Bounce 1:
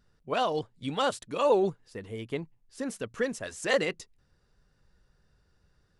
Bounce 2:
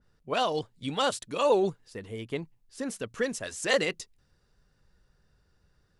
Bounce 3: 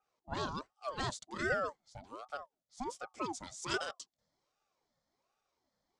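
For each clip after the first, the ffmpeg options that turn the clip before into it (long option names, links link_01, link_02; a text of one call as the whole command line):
ffmpeg -i in.wav -af "adynamicequalizer=threshold=0.00708:dfrequency=2500:dqfactor=0.7:tfrequency=2500:tqfactor=0.7:attack=5:release=100:ratio=0.375:range=2.5:mode=boostabove:tftype=highshelf" out.wav
ffmpeg -i in.wav -af "highpass=frequency=140:width=0.5412,highpass=frequency=140:width=1.3066,equalizer=frequency=250:width_type=q:width=4:gain=8,equalizer=frequency=2000:width_type=q:width=4:gain=-6,equalizer=frequency=2900:width_type=q:width=4:gain=-9,equalizer=frequency=4100:width_type=q:width=4:gain=7,equalizer=frequency=6600:width_type=q:width=4:gain=7,lowpass=frequency=8300:width=0.5412,lowpass=frequency=8300:width=1.3066,aeval=exprs='val(0)*sin(2*PI*680*n/s+680*0.5/1.3*sin(2*PI*1.3*n/s))':channel_layout=same,volume=-8dB" out.wav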